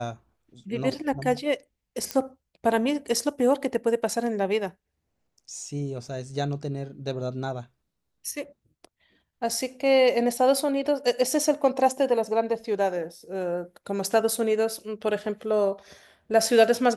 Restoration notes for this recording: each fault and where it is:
0:02.11: click −12 dBFS

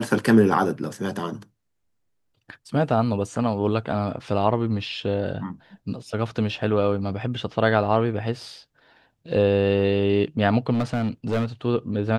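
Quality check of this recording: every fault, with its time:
0:10.74–0:11.46: clipping −19 dBFS

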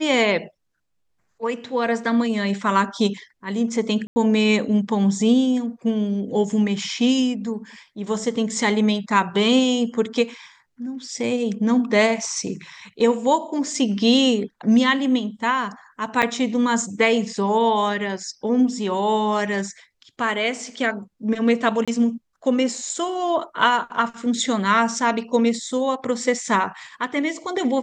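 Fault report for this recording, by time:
0:04.07–0:04.16: drop-out 90 ms
0:16.22–0:16.23: drop-out 7.6 ms
0:21.85–0:21.88: drop-out 26 ms

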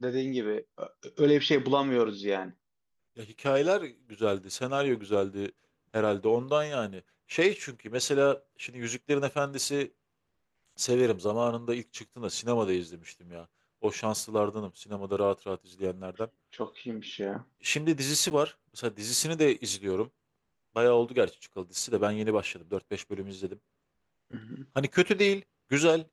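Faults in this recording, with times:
0:18.30–0:18.31: drop-out 9.6 ms

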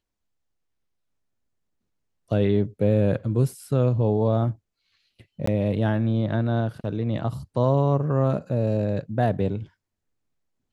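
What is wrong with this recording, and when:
0:05.46–0:05.47: drop-out 14 ms

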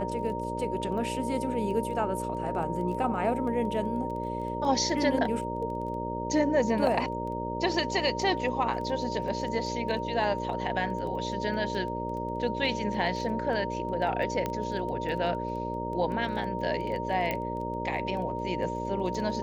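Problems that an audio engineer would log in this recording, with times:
mains buzz 60 Hz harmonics 10 −35 dBFS
surface crackle 11 per second −36 dBFS
whistle 930 Hz −34 dBFS
0:14.46: click −16 dBFS
0:17.31: click −16 dBFS

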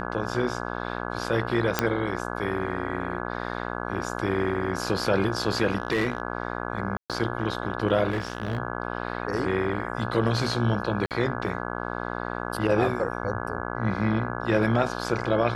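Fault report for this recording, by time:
mains buzz 60 Hz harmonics 28 −32 dBFS
0:01.79: click −5 dBFS
0:05.78–0:06.22: clipping −19 dBFS
0:06.97–0:07.10: drop-out 127 ms
0:08.10–0:08.58: clipping −23 dBFS
0:11.06–0:11.11: drop-out 48 ms

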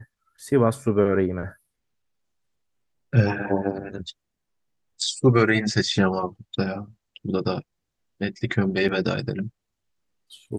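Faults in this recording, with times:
0:08.88–0:08.89: drop-out 5.9 ms

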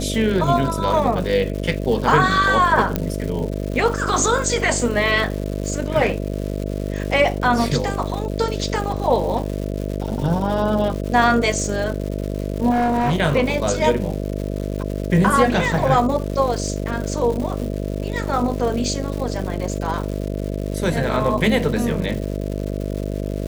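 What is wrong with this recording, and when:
mains buzz 50 Hz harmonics 13 −25 dBFS
surface crackle 290 per second −28 dBFS
0:02.96: click −6 dBFS
0:12.70–0:13.18: clipping −15.5 dBFS

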